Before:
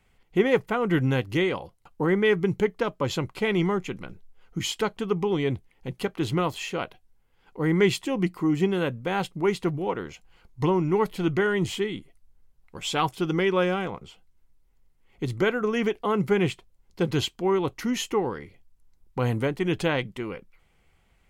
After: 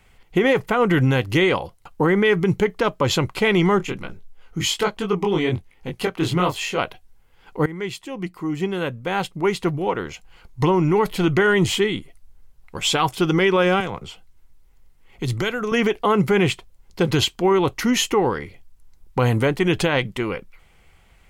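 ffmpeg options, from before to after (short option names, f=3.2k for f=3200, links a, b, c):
-filter_complex "[0:a]asplit=3[a][b][c];[a]afade=t=out:st=3.79:d=0.02[d];[b]flanger=delay=19:depth=6:speed=1.2,afade=t=in:st=3.79:d=0.02,afade=t=out:st=6.77:d=0.02[e];[c]afade=t=in:st=6.77:d=0.02[f];[d][e][f]amix=inputs=3:normalize=0,asettb=1/sr,asplit=3[g][h][i];[g]atrim=end=13.804[j];[h]atrim=start=13.8:end=15.72,asetpts=PTS-STARTPTS,afade=t=in:d=0.004:c=qsin,afade=t=out:st=1.916:d=0.004:c=qsin,acrossover=split=130|3000[k][l][m];[l]acompressor=threshold=-33dB:ratio=3:attack=3.2:release=140:knee=2.83:detection=peak[n];[k][n][m]amix=inputs=3:normalize=0[o];[i]atrim=start=15.716[p];[j][o]acrossfade=d=0.004:c1=hsin:c2=qsin[q];[q][p]acrossfade=d=0.004:c1=qsin:c2=hsin,asplit=2[r][s];[r]atrim=end=7.66,asetpts=PTS-STARTPTS,afade=t=out:st=7.656:d=0.004:c=hsin:silence=0.105925[t];[s]atrim=start=7.66,asetpts=PTS-STARTPTS,afade=t=in:d=3.28:silence=0.105925[u];[t][u]concat=n=2:v=0:a=1,equalizer=f=240:w=0.6:g=-3.5,alimiter=level_in=18.5dB:limit=-1dB:release=50:level=0:latency=1,volume=-8dB"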